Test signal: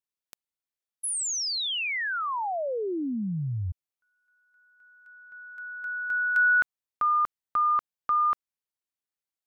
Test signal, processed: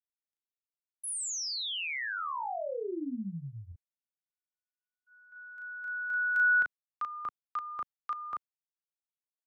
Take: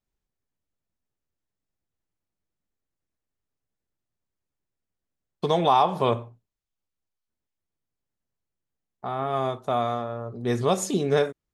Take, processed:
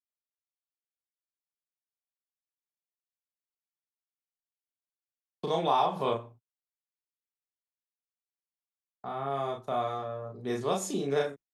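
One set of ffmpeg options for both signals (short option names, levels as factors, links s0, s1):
-filter_complex "[0:a]agate=range=0.00794:threshold=0.00282:ratio=16:release=134:detection=peak,asplit=2[s0][s1];[s1]adelay=36,volume=0.794[s2];[s0][s2]amix=inputs=2:normalize=0,acrossover=split=180|1300[s3][s4][s5];[s3]acompressor=threshold=0.0112:ratio=6:attack=68:release=282:knee=1[s6];[s6][s4][s5]amix=inputs=3:normalize=0,volume=0.398"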